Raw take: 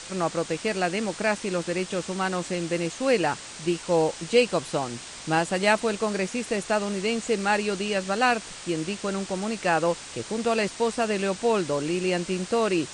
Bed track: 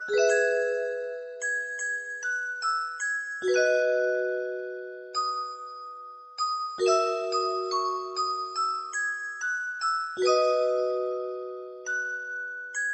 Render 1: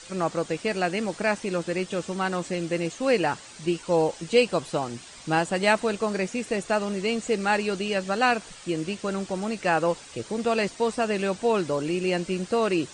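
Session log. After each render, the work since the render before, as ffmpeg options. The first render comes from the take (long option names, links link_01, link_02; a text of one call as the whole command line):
ffmpeg -i in.wav -af "afftdn=noise_reduction=9:noise_floor=-41" out.wav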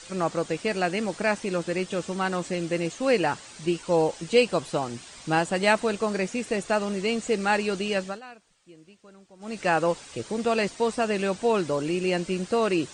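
ffmpeg -i in.wav -filter_complex "[0:a]asplit=3[link_01][link_02][link_03];[link_01]atrim=end=8.21,asetpts=PTS-STARTPTS,afade=type=out:start_time=7.99:duration=0.22:silence=0.0749894[link_04];[link_02]atrim=start=8.21:end=9.39,asetpts=PTS-STARTPTS,volume=-22.5dB[link_05];[link_03]atrim=start=9.39,asetpts=PTS-STARTPTS,afade=type=in:duration=0.22:silence=0.0749894[link_06];[link_04][link_05][link_06]concat=n=3:v=0:a=1" out.wav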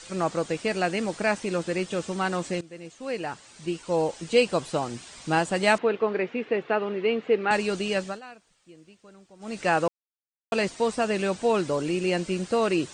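ffmpeg -i in.wav -filter_complex "[0:a]asettb=1/sr,asplit=3[link_01][link_02][link_03];[link_01]atrim=end=5.784[link_04];[link_02]atrim=start=5.78:end=7.51,asetpts=PTS-STARTPTS,afade=type=in:duration=0.004:curve=qsin,afade=type=out:start_time=1.726:duration=0.004:curve=qsin,highpass=frequency=140:width=0.5412,highpass=frequency=140:width=1.3066,equalizer=frequency=190:width_type=q:width=4:gain=-7,equalizer=frequency=430:width_type=q:width=4:gain=5,equalizer=frequency=620:width_type=q:width=4:gain=-3,lowpass=frequency=3000:width=0.5412,lowpass=frequency=3000:width=1.3066[link_05];[link_03]atrim=start=7.506[link_06];[link_04][link_05]acrossfade=duration=0.004:curve1=hsin:curve2=qsin[link_07];[link_07][link_06]acrossfade=duration=0.004:curve1=qsin:curve2=hsin,asplit=4[link_08][link_09][link_10][link_11];[link_08]atrim=end=2.61,asetpts=PTS-STARTPTS,afade=type=out:start_time=2.606:duration=0.004:curve=hsin:silence=0.112202[link_12];[link_09]atrim=start=2.61:end=9.88,asetpts=PTS-STARTPTS,afade=type=in:duration=1.92:silence=0.112202,afade=type=out:start_time=7.266:duration=0.004:curve=hsin[link_13];[link_10]atrim=start=9.88:end=10.52,asetpts=PTS-STARTPTS,volume=0[link_14];[link_11]atrim=start=10.52,asetpts=PTS-STARTPTS,afade=type=in:duration=0.004:curve=hsin[link_15];[link_12][link_13][link_14][link_15]concat=n=4:v=0:a=1" out.wav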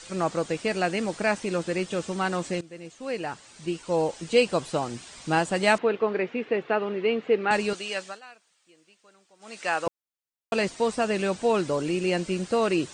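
ffmpeg -i in.wav -filter_complex "[0:a]asettb=1/sr,asplit=3[link_01][link_02][link_03];[link_01]atrim=end=7.734[link_04];[link_02]atrim=start=7.73:end=9.87,asetpts=PTS-STARTPTS,afade=type=in:duration=0.004:curve=qsin,afade=type=out:start_time=2.136:duration=0.004:curve=qsin,highpass=frequency=1000:poles=1[link_05];[link_03]atrim=start=9.866[link_06];[link_04][link_05]acrossfade=duration=0.004:curve1=hsin:curve2=qsin[link_07];[link_07][link_06]acrossfade=duration=0.004:curve1=qsin:curve2=hsin" out.wav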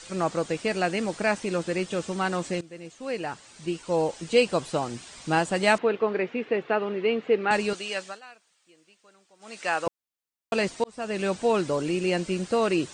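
ffmpeg -i in.wav -filter_complex "[0:a]asplit=2[link_01][link_02];[link_01]atrim=end=10.84,asetpts=PTS-STARTPTS,afade=type=out:start_time=10.836:duration=0.004:curve=hsin[link_03];[link_02]atrim=start=10.84,asetpts=PTS-STARTPTS,afade=type=in:duration=0.44[link_04];[link_03][link_04]concat=n=2:v=0:a=1" out.wav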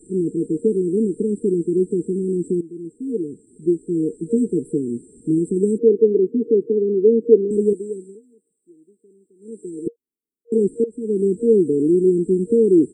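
ffmpeg -i in.wav -af "afftfilt=real='re*(1-between(b*sr/4096,470,7400))':imag='im*(1-between(b*sr/4096,470,7400))':win_size=4096:overlap=0.75,firequalizer=gain_entry='entry(110,0);entry(250,13);entry(1100,6);entry(2300,-4);entry(3900,-2)':delay=0.05:min_phase=1" out.wav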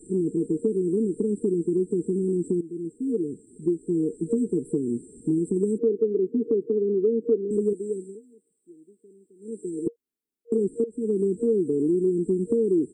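ffmpeg -i in.wav -af "acompressor=threshold=-22dB:ratio=3" out.wav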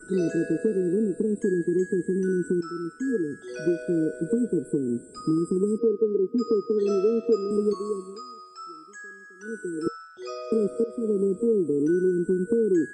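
ffmpeg -i in.wav -i bed.wav -filter_complex "[1:a]volume=-13dB[link_01];[0:a][link_01]amix=inputs=2:normalize=0" out.wav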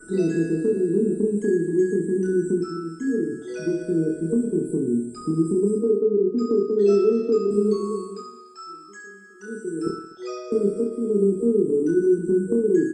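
ffmpeg -i in.wav -filter_complex "[0:a]asplit=2[link_01][link_02];[link_02]adelay=25,volume=-7.5dB[link_03];[link_01][link_03]amix=inputs=2:normalize=0,aecho=1:1:30|67.5|114.4|173|246.2:0.631|0.398|0.251|0.158|0.1" out.wav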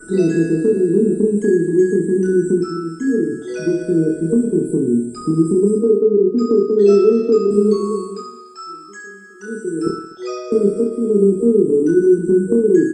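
ffmpeg -i in.wav -af "volume=6.5dB" out.wav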